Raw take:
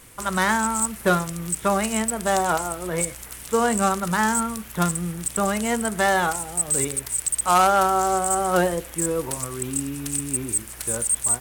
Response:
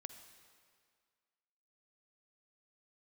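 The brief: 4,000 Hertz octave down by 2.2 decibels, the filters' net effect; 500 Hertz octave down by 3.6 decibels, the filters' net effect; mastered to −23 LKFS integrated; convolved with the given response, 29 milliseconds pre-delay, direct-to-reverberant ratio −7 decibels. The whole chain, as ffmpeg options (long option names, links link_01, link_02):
-filter_complex "[0:a]equalizer=frequency=500:width_type=o:gain=-4.5,equalizer=frequency=4000:width_type=o:gain=-3,asplit=2[link_01][link_02];[1:a]atrim=start_sample=2205,adelay=29[link_03];[link_02][link_03]afir=irnorm=-1:irlink=0,volume=11.5dB[link_04];[link_01][link_04]amix=inputs=2:normalize=0,volume=-7dB"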